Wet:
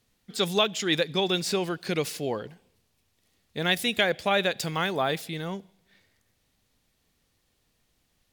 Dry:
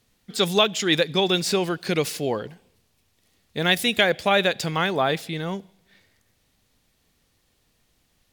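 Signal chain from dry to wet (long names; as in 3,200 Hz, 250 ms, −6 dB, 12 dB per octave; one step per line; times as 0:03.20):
0:04.57–0:05.48: high-shelf EQ 8,000 Hz +7.5 dB
level −4.5 dB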